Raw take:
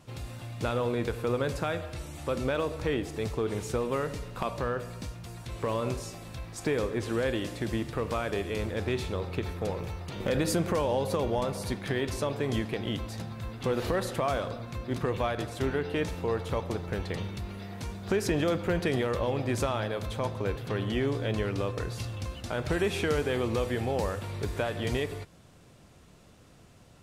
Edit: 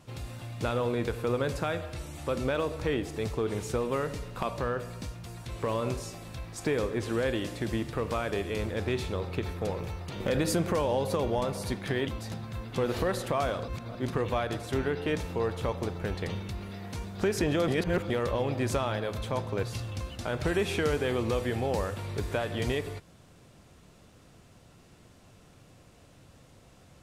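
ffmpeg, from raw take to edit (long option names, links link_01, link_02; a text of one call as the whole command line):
ffmpeg -i in.wav -filter_complex "[0:a]asplit=7[link_01][link_02][link_03][link_04][link_05][link_06][link_07];[link_01]atrim=end=12.072[link_08];[link_02]atrim=start=12.948:end=14.562[link_09];[link_03]atrim=start=14.558:end=14.832,asetpts=PTS-STARTPTS,areverse[link_10];[link_04]atrim=start=14.828:end=18.562[link_11];[link_05]atrim=start=18.558:end=18.982,asetpts=PTS-STARTPTS,areverse[link_12];[link_06]atrim=start=18.978:end=20.512[link_13];[link_07]atrim=start=21.878[link_14];[link_08][link_09]acrossfade=duration=0.004:curve1=hsin:curve2=hsin[link_15];[link_15][link_10]acrossfade=duration=0.004:curve1=hsin:curve2=hsin[link_16];[link_16][link_11]acrossfade=duration=0.004:curve1=hsin:curve2=hsin[link_17];[link_17][link_12]acrossfade=duration=0.004:curve1=hsin:curve2=hsin[link_18];[link_18][link_13]acrossfade=duration=0.004:curve1=hsin:curve2=hsin[link_19];[link_19][link_14]acrossfade=duration=0.004:curve1=hsin:curve2=hsin" out.wav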